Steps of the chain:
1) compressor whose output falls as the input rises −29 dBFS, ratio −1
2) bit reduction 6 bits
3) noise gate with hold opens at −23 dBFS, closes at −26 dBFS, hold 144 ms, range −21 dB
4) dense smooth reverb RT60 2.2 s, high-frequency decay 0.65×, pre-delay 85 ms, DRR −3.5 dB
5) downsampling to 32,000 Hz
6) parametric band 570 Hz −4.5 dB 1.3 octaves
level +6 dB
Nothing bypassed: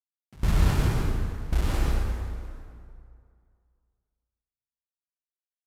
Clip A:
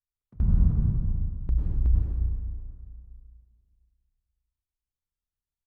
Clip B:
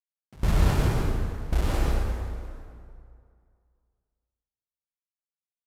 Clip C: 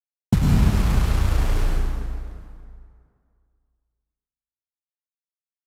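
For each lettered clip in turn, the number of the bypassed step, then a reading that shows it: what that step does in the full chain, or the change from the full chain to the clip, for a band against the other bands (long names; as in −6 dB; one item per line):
2, distortion level −10 dB
6, 500 Hz band +3.0 dB
1, 250 Hz band +4.5 dB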